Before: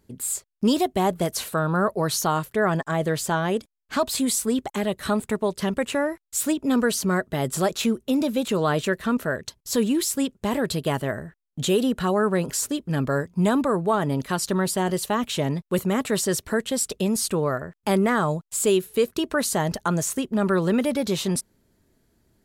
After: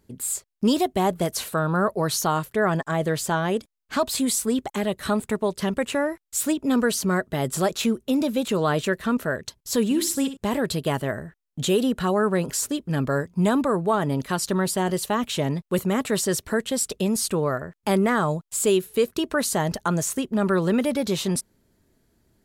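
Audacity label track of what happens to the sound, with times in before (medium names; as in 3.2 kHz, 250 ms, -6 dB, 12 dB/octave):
9.840000	10.370000	flutter echo walls apart 10.8 m, dies away in 0.35 s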